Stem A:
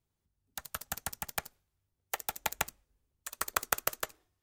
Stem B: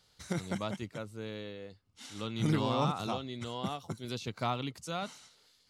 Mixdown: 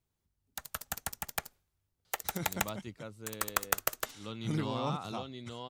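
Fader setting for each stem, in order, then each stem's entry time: 0.0, −4.0 decibels; 0.00, 2.05 seconds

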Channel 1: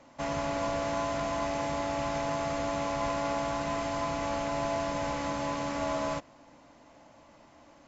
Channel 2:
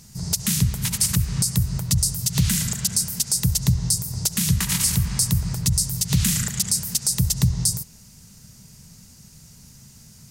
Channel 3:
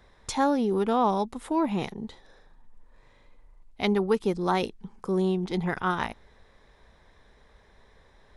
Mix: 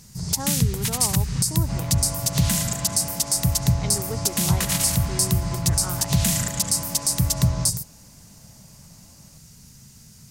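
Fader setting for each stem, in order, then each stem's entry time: −5.0, −0.5, −9.5 decibels; 1.50, 0.00, 0.00 seconds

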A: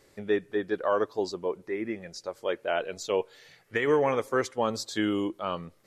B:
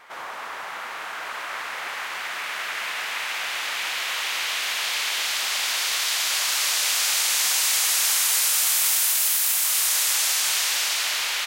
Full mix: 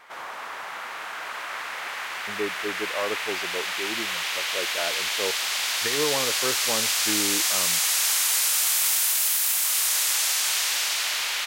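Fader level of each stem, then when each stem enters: −3.5, −1.5 decibels; 2.10, 0.00 seconds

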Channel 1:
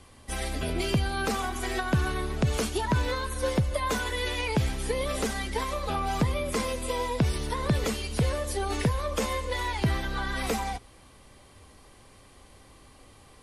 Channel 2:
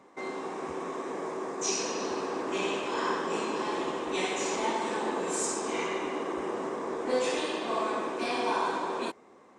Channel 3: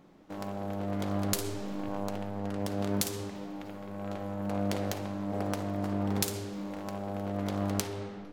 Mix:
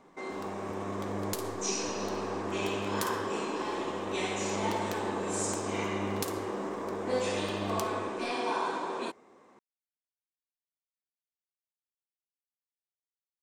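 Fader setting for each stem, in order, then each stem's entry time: muted, −2.5 dB, −6.0 dB; muted, 0.00 s, 0.00 s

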